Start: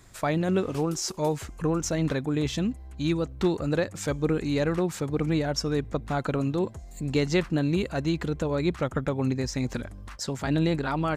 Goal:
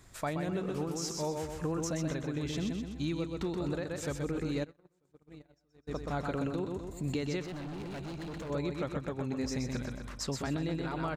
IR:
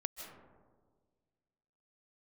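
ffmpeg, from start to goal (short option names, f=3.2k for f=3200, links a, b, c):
-filter_complex "[0:a]aecho=1:1:126|252|378|504|630:0.596|0.262|0.115|0.0507|0.0223,alimiter=limit=-20dB:level=0:latency=1:release=447,asplit=3[a][b][c];[a]afade=t=out:st=4.63:d=0.02[d];[b]agate=range=-39dB:threshold=-25dB:ratio=16:detection=peak,afade=t=in:st=4.63:d=0.02,afade=t=out:st=5.87:d=0.02[e];[c]afade=t=in:st=5.87:d=0.02[f];[d][e][f]amix=inputs=3:normalize=0,asettb=1/sr,asplit=3[g][h][i];[g]atrim=end=7.444[j];[h]atrim=start=7.44:end=8.5,asetpts=PTS-STARTPTS,afade=t=in:d=0.004:c=qsin,afade=t=out:st=1.056:d=0.004:c=qsin,asoftclip=type=hard:threshold=-34.5dB[k];[i]atrim=start=8.496[l];[j][k]acrossfade=d=0.004:c1=hsin:c2=qsin[m];[m][l]acrossfade=d=0.004:c1=qsin:c2=hsin,volume=-4dB"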